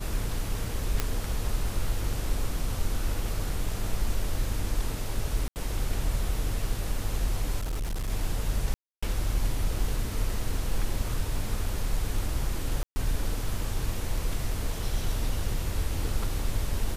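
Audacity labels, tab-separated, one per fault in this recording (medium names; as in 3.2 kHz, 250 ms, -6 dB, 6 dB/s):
1.000000	1.000000	pop -10 dBFS
5.480000	5.560000	dropout 79 ms
7.580000	8.100000	clipped -27 dBFS
8.740000	9.030000	dropout 285 ms
12.830000	12.960000	dropout 130 ms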